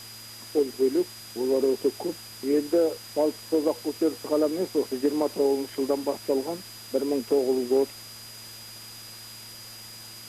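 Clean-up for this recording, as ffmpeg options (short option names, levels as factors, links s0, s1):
-af "adeclick=t=4,bandreject=f=112.9:t=h:w=4,bandreject=f=225.8:t=h:w=4,bandreject=f=338.7:t=h:w=4,bandreject=f=4900:w=30,afwtdn=0.0063"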